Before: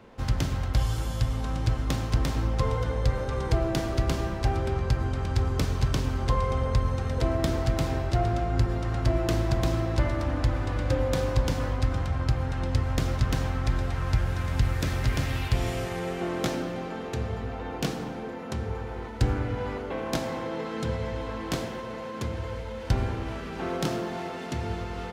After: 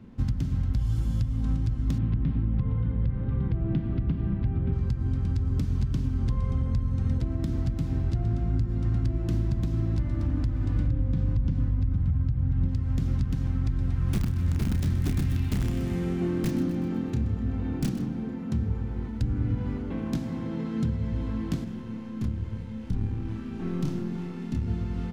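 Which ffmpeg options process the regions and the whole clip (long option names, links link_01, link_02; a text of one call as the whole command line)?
ffmpeg -i in.wav -filter_complex "[0:a]asettb=1/sr,asplit=3[link_01][link_02][link_03];[link_01]atrim=end=1.984[link_04];[link_02]atrim=start=1.98:end=4.73,asetpts=PTS-STARTPTS,afade=type=in:duration=0.004:curve=qsin,afade=type=out:start_time=2.746:duration=0.004:curve=qsin,lowpass=frequency=3200:width=0.5412,lowpass=frequency=3200:width=1.3066,equalizer=frequency=160:width=1.2:gain=5.5[link_05];[link_03]atrim=start=4.726[link_06];[link_04][link_05]acrossfade=duration=0.004:curve1=hsin:curve2=qsin[link_07];[link_07][link_06]acrossfade=duration=0.004:curve1=qsin:curve2=hsin,asettb=1/sr,asplit=3[link_08][link_09][link_10];[link_08]atrim=end=10.874[link_11];[link_09]atrim=start=10.87:end=12.68,asetpts=PTS-STARTPTS,afade=type=in:duration=0.004:curve=qsin,afade=type=out:start_time=1.806:duration=0.004:curve=qsin,acrossover=split=6500[link_12][link_13];[link_13]acompressor=threshold=-54dB:ratio=4:attack=1:release=60[link_14];[link_12][link_14]amix=inputs=2:normalize=0,bass=frequency=250:gain=7,treble=frequency=4000:gain=-6[link_15];[link_10]atrim=start=12.676[link_16];[link_11][link_15]acrossfade=duration=0.004:curve1=hsin:curve2=qsin[link_17];[link_17][link_16]acrossfade=duration=0.004:curve1=qsin:curve2=hsin,asettb=1/sr,asplit=3[link_18][link_19][link_20];[link_18]atrim=end=14.054[link_21];[link_19]atrim=start=14.05:end=18.06,asetpts=PTS-STARTPTS,afade=type=in:duration=0.004:curve=qsin,afade=type=out:start_time=4.006:duration=0.004:curve=qsin,aeval=exprs='(mod(8.91*val(0)+1,2)-1)/8.91':channel_layout=same,asplit=2[link_22][link_23];[link_23]adelay=31,volume=-7dB[link_24];[link_22][link_24]amix=inputs=2:normalize=0,atrim=end_sample=176841,aecho=1:1:126|252|378|504|630:0.224|0.119|0.0629|0.0333|0.0177,atrim=end_sample=176841[link_25];[link_20]atrim=start=18.056[link_26];[link_21][link_25]acrossfade=duration=0.004:curve1=hsin:curve2=qsin[link_27];[link_27][link_26]acrossfade=duration=0.004:curve1=qsin:curve2=hsin,asettb=1/sr,asplit=3[link_28][link_29][link_30];[link_28]atrim=end=21.644[link_31];[link_29]atrim=start=21.64:end=24.68,asetpts=PTS-STARTPTS,afade=type=in:duration=0.004:curve=qsin,afade=type=out:start_time=3.036:duration=0.004:curve=qsin,aeval=exprs='(tanh(10*val(0)+0.8)-tanh(0.8))/10':channel_layout=same,asplit=2[link_32][link_33];[link_33]adelay=28,volume=-2dB[link_34];[link_32][link_34]amix=inputs=2:normalize=0,atrim=end_sample=134064[link_35];[link_30]atrim=start=24.676[link_36];[link_31][link_35]acrossfade=duration=0.004:curve1=hsin:curve2=qsin[link_37];[link_37][link_36]acrossfade=duration=0.004:curve1=qsin:curve2=hsin,lowshelf=frequency=350:width_type=q:width=1.5:gain=14,alimiter=limit=-9.5dB:level=0:latency=1:release=345,volume=-8dB" out.wav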